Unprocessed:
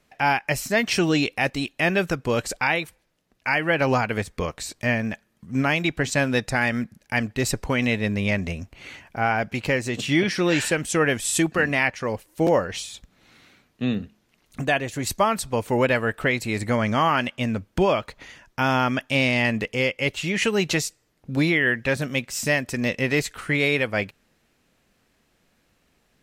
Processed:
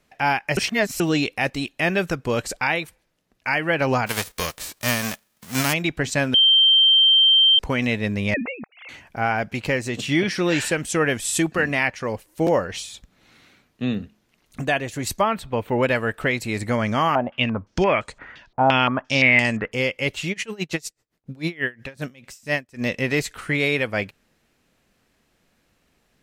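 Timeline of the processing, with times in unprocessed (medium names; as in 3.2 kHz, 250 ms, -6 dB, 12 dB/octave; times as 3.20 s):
0.57–1.00 s: reverse
4.06–5.72 s: formants flattened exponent 0.3
6.34–7.59 s: bleep 3.14 kHz -11.5 dBFS
8.34–8.89 s: formants replaced by sine waves
15.21–15.83 s: high-order bell 7.8 kHz -14 dB
17.15–19.72 s: step-sequenced low-pass 5.8 Hz 760–7900 Hz
20.32–22.80 s: logarithmic tremolo 9.9 Hz -> 3.2 Hz, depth 26 dB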